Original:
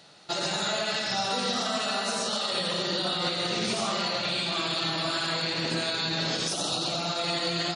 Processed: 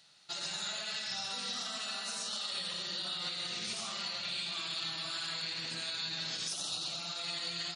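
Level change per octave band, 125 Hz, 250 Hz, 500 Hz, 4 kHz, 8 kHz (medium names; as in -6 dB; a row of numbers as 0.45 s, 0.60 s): -16.0 dB, -18.0 dB, -19.5 dB, -7.0 dB, -6.0 dB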